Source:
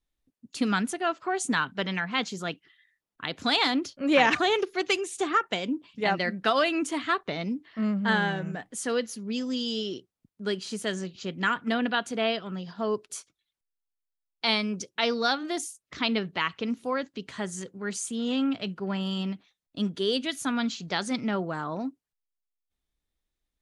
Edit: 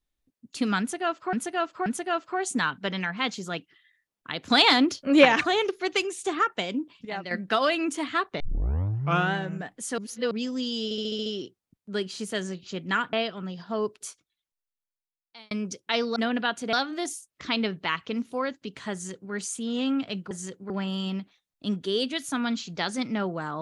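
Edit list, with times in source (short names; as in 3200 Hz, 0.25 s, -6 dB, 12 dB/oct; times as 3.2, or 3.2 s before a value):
0.8–1.33 loop, 3 plays
3.44–4.19 gain +5.5 dB
5.99–6.25 gain -8.5 dB
7.34 tape start 0.95 s
8.92–9.25 reverse
9.78 stutter 0.07 s, 7 plays
11.65–12.22 move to 15.25
13.08–14.6 fade out
17.45–17.84 copy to 18.83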